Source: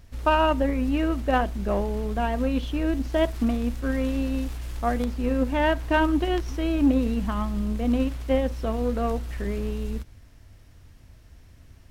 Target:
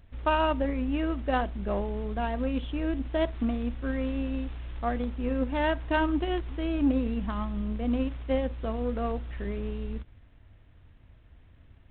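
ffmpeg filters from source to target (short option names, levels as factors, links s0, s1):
-filter_complex "[0:a]asettb=1/sr,asplit=3[s0][s1][s2];[s0]atrim=end=0.654[s3];[s1]atrim=start=0.65:end=1.51,asetpts=PTS-STARTPTS,afade=t=in:d=0.004:c=qsin,afade=t=out:st=0.856:d=0.004:c=qsin,adynamicequalizer=threshold=0.00251:dfrequency=130:dqfactor=4.6:tfrequency=130:tqfactor=4.6:attack=5:release=100:ratio=0.375:range=1.5:mode=cutabove:tftype=bell[s4];[s2]atrim=start=1.506[s5];[s3][s4]acrossfade=d=0.004:c1=hsin:c2=qsin[s6];[s6][s5]acrossfade=d=0.004:c1=qsin:c2=hsin,volume=0.596" -ar 8000 -c:a adpcm_g726 -b:a 32k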